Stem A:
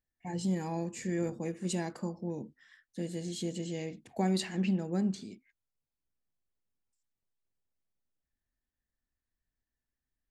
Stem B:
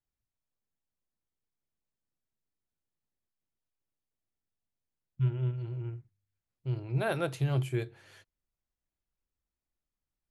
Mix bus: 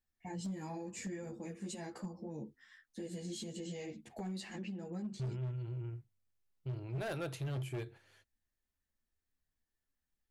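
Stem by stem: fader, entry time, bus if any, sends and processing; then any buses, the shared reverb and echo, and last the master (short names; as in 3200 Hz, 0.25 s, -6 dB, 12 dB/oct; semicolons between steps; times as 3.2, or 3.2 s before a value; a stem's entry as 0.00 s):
+2.5 dB, 0.00 s, no send, compressor 16:1, threshold -36 dBFS, peak gain reduction 12 dB; ensemble effect
-3.0 dB, 0.00 s, no send, gate -48 dBFS, range -7 dB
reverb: off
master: hard clip -32 dBFS, distortion -11 dB; limiter -35 dBFS, peak gain reduction 3 dB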